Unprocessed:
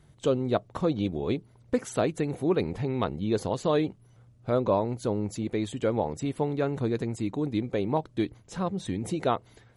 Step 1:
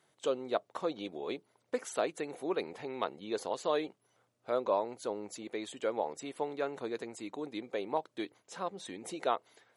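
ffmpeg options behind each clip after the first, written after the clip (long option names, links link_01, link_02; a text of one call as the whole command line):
ffmpeg -i in.wav -af "highpass=470,volume=-3.5dB" out.wav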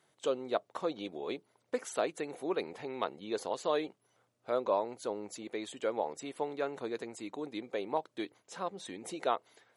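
ffmpeg -i in.wav -af anull out.wav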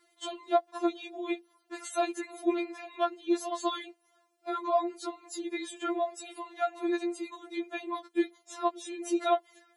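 ffmpeg -i in.wav -af "afftfilt=real='re*4*eq(mod(b,16),0)':imag='im*4*eq(mod(b,16),0)':win_size=2048:overlap=0.75,volume=6.5dB" out.wav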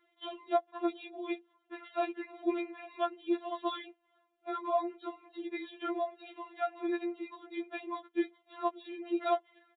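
ffmpeg -i in.wav -af "aresample=8000,aresample=44100,volume=-3.5dB" out.wav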